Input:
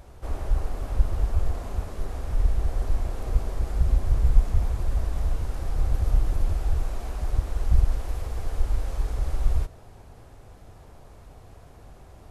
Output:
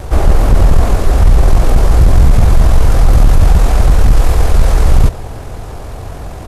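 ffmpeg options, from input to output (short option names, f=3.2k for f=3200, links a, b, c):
-af "acontrast=61,apsyclip=18dB,atempo=1.9,volume=-1.5dB"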